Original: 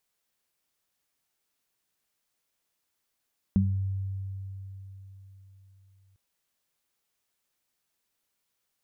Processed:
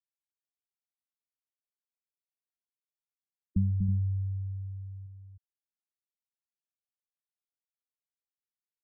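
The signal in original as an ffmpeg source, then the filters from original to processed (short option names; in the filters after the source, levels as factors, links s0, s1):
-f lavfi -i "aevalsrc='0.075*pow(10,-3*t/4.1)*sin(2*PI*96.7*t)+0.15*pow(10,-3*t/0.36)*sin(2*PI*193.4*t)':d=2.6:s=44100"
-filter_complex "[0:a]aecho=1:1:242|248|321:0.282|0.335|0.266,acrossover=split=180|420[s0][s1][s2];[s1]alimiter=level_in=3.35:limit=0.0631:level=0:latency=1,volume=0.299[s3];[s0][s3][s2]amix=inputs=3:normalize=0,afftfilt=real='re*gte(hypot(re,im),0.0562)':imag='im*gte(hypot(re,im),0.0562)':win_size=1024:overlap=0.75"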